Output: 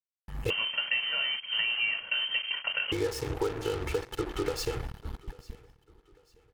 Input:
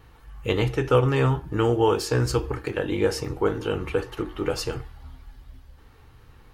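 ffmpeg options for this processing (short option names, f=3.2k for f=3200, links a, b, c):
-filter_complex "[0:a]agate=range=-33dB:threshold=-38dB:ratio=3:detection=peak,aecho=1:1:2.3:0.97,acompressor=threshold=-28dB:ratio=6,acrusher=bits=5:mix=0:aa=0.5,aecho=1:1:845|1690|2535:0.075|0.0277|0.0103,asettb=1/sr,asplit=3[a][b][c];[a]atrim=end=0.504[d];[b]atrim=start=0.5:end=2.92,asetpts=PTS-STARTPTS,afade=t=in:d=0.004:c=qsin,afade=t=out:st=2.416:d=0.004:c=qsin,lowpass=f=2.7k:t=q:w=0.5098,lowpass=f=2.7k:t=q:w=0.6013,lowpass=f=2.7k:t=q:w=0.9,lowpass=f=2.7k:t=q:w=2.563,afreqshift=-3200[e];[c]atrim=start=2.916[f];[d][e]acrossfade=d=0.004:c1=hsin:c2=qsin[g];[g][f]acrossfade=d=0.004:c1=qsin:c2=hsin"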